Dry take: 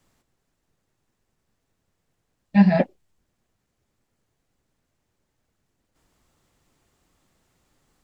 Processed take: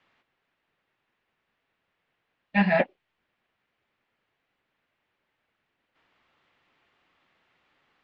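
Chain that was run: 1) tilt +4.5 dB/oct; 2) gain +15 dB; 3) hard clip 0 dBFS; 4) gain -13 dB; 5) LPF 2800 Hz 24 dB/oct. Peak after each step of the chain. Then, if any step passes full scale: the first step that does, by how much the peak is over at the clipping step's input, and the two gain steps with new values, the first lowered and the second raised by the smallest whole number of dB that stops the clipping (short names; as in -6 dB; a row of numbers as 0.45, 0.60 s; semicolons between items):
-9.5, +5.5, 0.0, -13.0, -12.0 dBFS; step 2, 5.5 dB; step 2 +9 dB, step 4 -7 dB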